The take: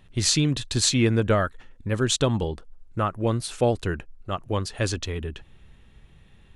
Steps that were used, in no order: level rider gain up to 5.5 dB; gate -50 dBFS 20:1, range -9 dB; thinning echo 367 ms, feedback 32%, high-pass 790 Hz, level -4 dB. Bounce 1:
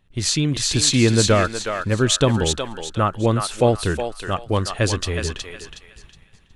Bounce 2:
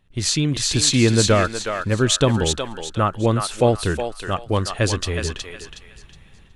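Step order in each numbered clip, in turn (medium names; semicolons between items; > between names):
gate > thinning echo > level rider; thinning echo > level rider > gate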